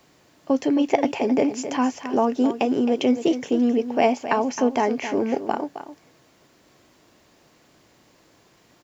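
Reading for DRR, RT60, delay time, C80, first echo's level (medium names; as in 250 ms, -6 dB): no reverb, no reverb, 265 ms, no reverb, -11.0 dB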